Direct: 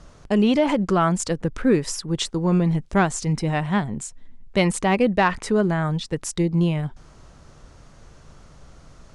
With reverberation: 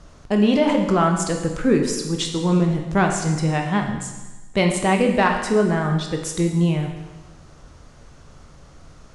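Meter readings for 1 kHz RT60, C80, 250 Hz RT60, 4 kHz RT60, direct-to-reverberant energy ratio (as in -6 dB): 1.2 s, 7.5 dB, 1.2 s, 1.2 s, 3.0 dB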